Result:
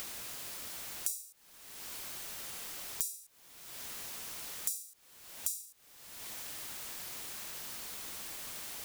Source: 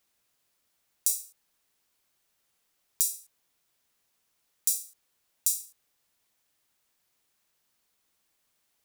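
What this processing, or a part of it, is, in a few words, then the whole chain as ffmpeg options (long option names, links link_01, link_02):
upward and downward compression: -af "acompressor=mode=upward:threshold=-31dB:ratio=2.5,acompressor=threshold=-41dB:ratio=5,volume=7.5dB"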